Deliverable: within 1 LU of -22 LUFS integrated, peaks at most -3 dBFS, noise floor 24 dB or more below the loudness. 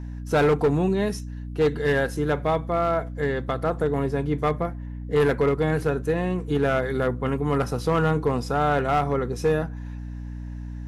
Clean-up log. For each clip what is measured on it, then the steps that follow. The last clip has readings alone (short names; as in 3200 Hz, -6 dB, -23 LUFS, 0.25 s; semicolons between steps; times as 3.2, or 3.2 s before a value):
clipped 1.0%; flat tops at -14.5 dBFS; hum 60 Hz; harmonics up to 300 Hz; hum level -31 dBFS; loudness -24.0 LUFS; peak -14.5 dBFS; loudness target -22.0 LUFS
-> clip repair -14.5 dBFS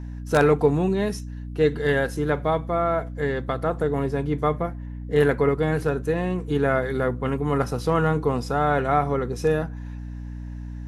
clipped 0.0%; hum 60 Hz; harmonics up to 300 Hz; hum level -31 dBFS
-> notches 60/120/180/240/300 Hz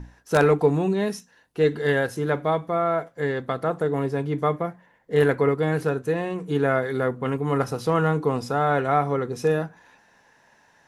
hum none; loudness -24.0 LUFS; peak -6.0 dBFS; loudness target -22.0 LUFS
-> gain +2 dB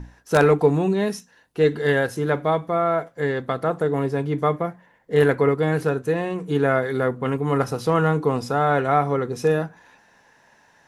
loudness -22.0 LUFS; peak -4.0 dBFS; noise floor -58 dBFS